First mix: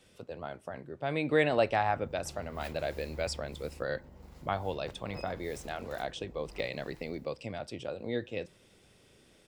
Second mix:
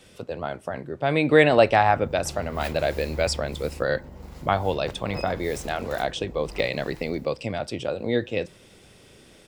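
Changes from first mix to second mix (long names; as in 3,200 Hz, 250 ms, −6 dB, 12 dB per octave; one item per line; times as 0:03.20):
speech +10.0 dB
background +10.5 dB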